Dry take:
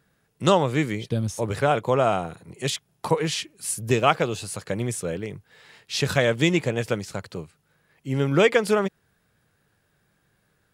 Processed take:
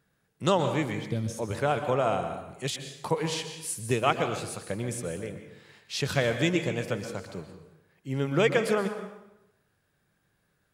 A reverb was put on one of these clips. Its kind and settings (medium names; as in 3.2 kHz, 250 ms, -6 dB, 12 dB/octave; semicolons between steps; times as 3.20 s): plate-style reverb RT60 0.91 s, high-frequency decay 0.75×, pre-delay 110 ms, DRR 7.5 dB; trim -5.5 dB